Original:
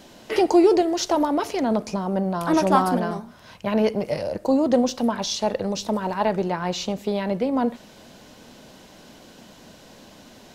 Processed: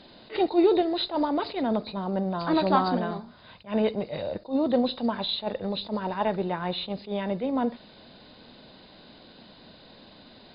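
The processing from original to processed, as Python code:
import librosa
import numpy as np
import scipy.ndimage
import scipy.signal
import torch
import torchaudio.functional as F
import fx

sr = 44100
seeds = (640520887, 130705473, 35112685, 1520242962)

y = fx.freq_compress(x, sr, knee_hz=3500.0, ratio=4.0)
y = fx.attack_slew(y, sr, db_per_s=250.0)
y = y * librosa.db_to_amplitude(-4.0)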